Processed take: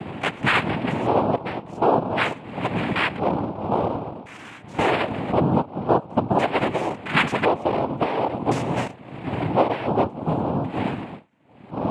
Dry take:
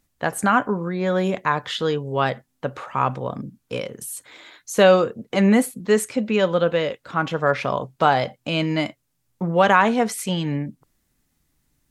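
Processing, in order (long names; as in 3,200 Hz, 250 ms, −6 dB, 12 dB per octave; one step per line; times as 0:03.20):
0:07.14–0:08.58: converter with a step at zero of −25 dBFS
wind on the microphone 310 Hz −29 dBFS
downward compressor 5 to 1, threshold −24 dBFS, peak gain reduction 13 dB
auto-filter low-pass square 0.47 Hz 530–1,500 Hz
cochlear-implant simulation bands 4
level +3 dB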